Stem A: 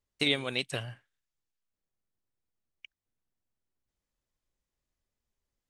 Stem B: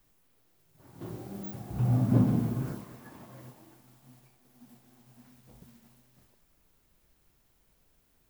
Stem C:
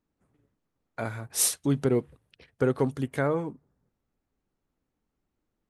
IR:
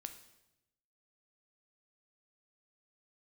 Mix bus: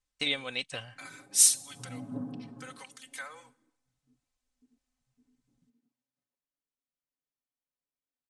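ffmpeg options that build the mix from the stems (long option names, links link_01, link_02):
-filter_complex "[0:a]equalizer=frequency=290:width=0.89:gain=-7.5,volume=-2.5dB[link_01];[1:a]highpass=frequency=190:poles=1,afwtdn=0.00398,aecho=1:1:7.2:0.97,volume=-15.5dB[link_02];[2:a]highpass=940,aderivative,aecho=1:1:3.9:0.46,volume=1dB,asplit=2[link_03][link_04];[link_04]volume=-4dB[link_05];[3:a]atrim=start_sample=2205[link_06];[link_05][link_06]afir=irnorm=-1:irlink=0[link_07];[link_01][link_02][link_03][link_07]amix=inputs=4:normalize=0,lowpass=frequency=9000:width=0.5412,lowpass=frequency=9000:width=1.3066,aecho=1:1:3.9:0.49"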